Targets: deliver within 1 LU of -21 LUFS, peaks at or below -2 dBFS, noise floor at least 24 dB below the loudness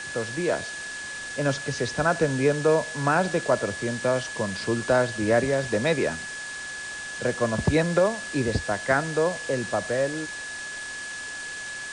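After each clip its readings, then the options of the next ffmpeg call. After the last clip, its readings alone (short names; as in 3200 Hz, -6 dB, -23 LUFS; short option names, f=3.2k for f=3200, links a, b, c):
steady tone 1700 Hz; tone level -34 dBFS; noise floor -36 dBFS; noise floor target -50 dBFS; loudness -26.0 LUFS; peak -9.5 dBFS; loudness target -21.0 LUFS
-> -af "bandreject=f=1.7k:w=30"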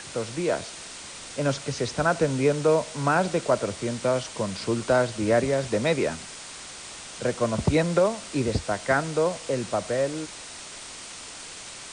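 steady tone none; noise floor -41 dBFS; noise floor target -50 dBFS
-> -af "afftdn=nr=9:nf=-41"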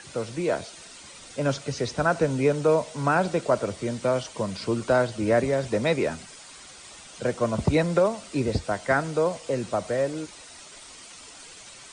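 noise floor -46 dBFS; noise floor target -50 dBFS
-> -af "afftdn=nr=6:nf=-46"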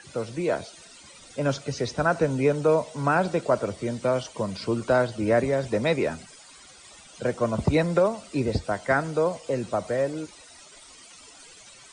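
noise floor -50 dBFS; loudness -25.5 LUFS; peak -10.0 dBFS; loudness target -21.0 LUFS
-> -af "volume=4.5dB"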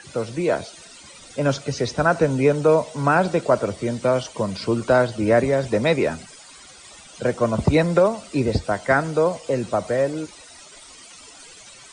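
loudness -21.0 LUFS; peak -5.5 dBFS; noise floor -45 dBFS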